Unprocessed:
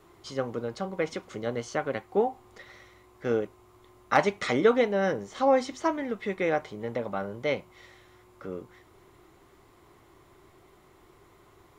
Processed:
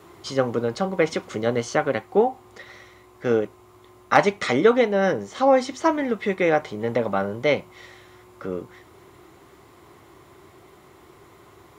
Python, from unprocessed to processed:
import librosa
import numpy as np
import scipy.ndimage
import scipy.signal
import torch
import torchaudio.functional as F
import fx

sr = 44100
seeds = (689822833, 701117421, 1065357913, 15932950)

p1 = scipy.signal.sosfilt(scipy.signal.butter(2, 68.0, 'highpass', fs=sr, output='sos'), x)
p2 = fx.rider(p1, sr, range_db=4, speed_s=0.5)
y = p1 + F.gain(torch.from_numpy(p2), 1.0).numpy()